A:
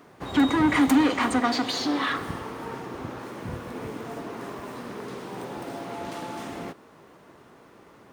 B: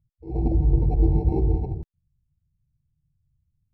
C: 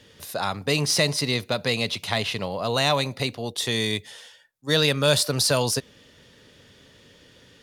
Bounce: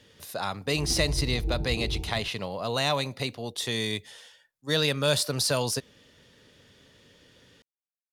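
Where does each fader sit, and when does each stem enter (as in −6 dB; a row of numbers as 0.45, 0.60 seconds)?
muted, −11.0 dB, −4.5 dB; muted, 0.45 s, 0.00 s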